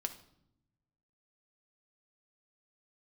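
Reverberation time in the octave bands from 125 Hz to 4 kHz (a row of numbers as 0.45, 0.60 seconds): 1.6, 1.3, 0.80, 0.70, 0.55, 0.55 seconds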